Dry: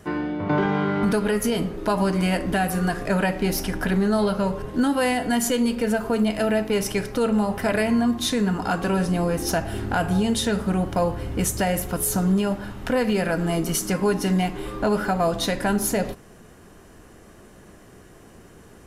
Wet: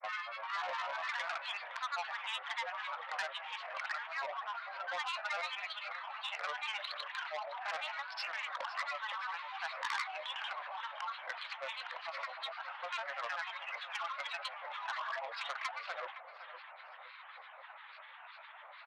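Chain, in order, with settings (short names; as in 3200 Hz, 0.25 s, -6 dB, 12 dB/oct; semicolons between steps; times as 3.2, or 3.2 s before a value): Chebyshev band-pass 780–3300 Hz, order 5; compressor 2:1, threshold -48 dBFS, peak gain reduction 14 dB; grains, pitch spread up and down by 7 st; feedback echo 0.514 s, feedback 42%, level -14 dB; core saturation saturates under 3400 Hz; gain +5.5 dB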